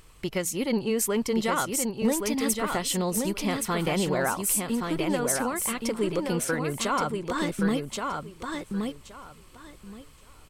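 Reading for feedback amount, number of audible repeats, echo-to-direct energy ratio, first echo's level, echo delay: 19%, 3, -4.5 dB, -4.5 dB, 1123 ms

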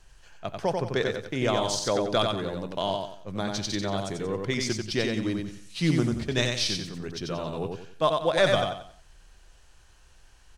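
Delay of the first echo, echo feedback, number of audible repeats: 91 ms, 33%, 4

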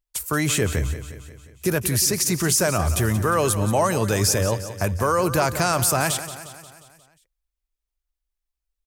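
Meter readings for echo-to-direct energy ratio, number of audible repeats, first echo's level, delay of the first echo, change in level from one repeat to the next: -11.0 dB, 5, -12.5 dB, 178 ms, -5.0 dB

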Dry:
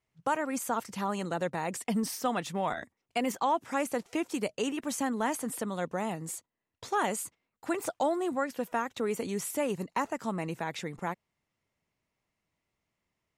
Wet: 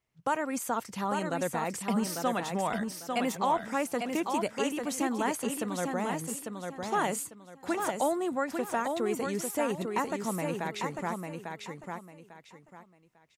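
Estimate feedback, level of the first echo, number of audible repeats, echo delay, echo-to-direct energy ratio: 26%, -5.0 dB, 3, 848 ms, -4.5 dB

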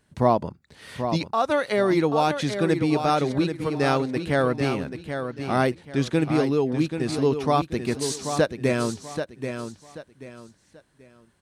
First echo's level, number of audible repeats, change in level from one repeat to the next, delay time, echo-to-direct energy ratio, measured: -8.0 dB, 3, -10.5 dB, 784 ms, -7.5 dB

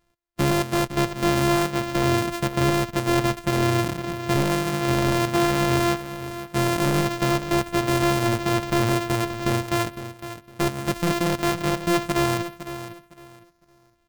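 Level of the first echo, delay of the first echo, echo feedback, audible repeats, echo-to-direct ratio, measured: -12.0 dB, 508 ms, 24%, 2, -11.5 dB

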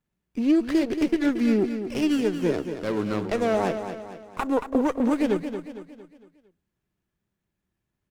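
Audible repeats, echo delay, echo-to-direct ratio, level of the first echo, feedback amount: 4, 228 ms, -8.0 dB, -9.0 dB, 45%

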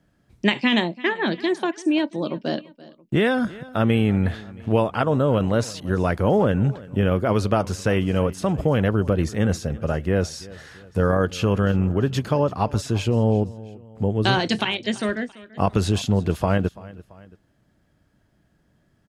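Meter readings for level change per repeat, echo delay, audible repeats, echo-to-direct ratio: -6.0 dB, 337 ms, 2, -19.0 dB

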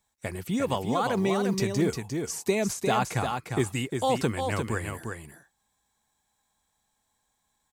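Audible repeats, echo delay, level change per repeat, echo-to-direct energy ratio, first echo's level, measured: 1, 352 ms, no regular repeats, -5.5 dB, -5.5 dB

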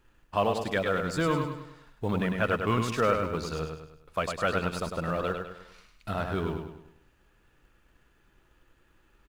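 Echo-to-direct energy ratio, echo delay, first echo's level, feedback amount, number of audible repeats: -4.5 dB, 102 ms, -5.5 dB, 43%, 5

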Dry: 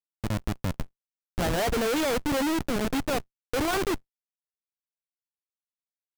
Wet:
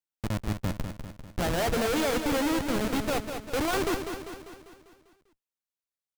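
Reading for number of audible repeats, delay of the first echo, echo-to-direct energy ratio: 6, 198 ms, -6.0 dB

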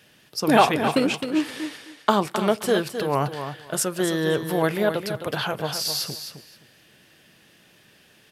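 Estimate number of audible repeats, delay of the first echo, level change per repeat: 2, 262 ms, -15.0 dB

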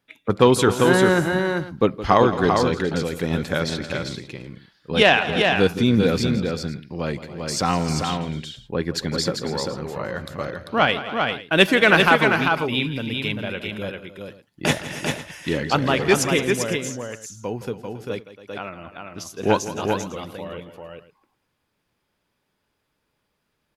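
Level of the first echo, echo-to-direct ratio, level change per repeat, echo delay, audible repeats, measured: -14.5 dB, -3.5 dB, no regular repeats, 166 ms, 4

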